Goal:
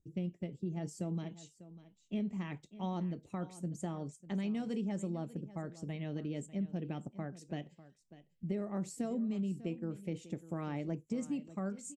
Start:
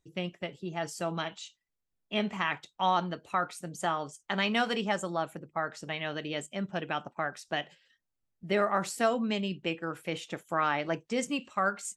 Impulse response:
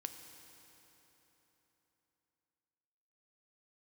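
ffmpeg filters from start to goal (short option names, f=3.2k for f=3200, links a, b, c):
-af "firequalizer=gain_entry='entry(200,0);entry(690,-17);entry(1400,-27);entry(2100,-19);entry(3100,-22);entry(7400,-11);entry(11000,-18)':delay=0.05:min_phase=1,acompressor=threshold=-37dB:ratio=6,aecho=1:1:597:0.15,volume=4dB"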